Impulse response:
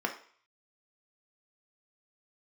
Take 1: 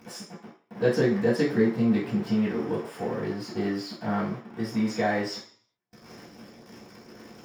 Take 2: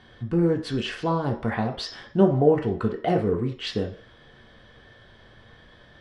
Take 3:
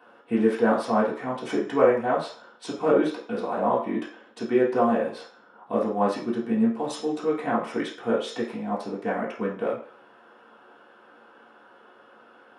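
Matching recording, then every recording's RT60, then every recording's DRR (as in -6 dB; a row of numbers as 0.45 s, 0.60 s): 2; 0.50 s, 0.50 s, 0.50 s; -14.0 dB, 1.5 dB, -6.5 dB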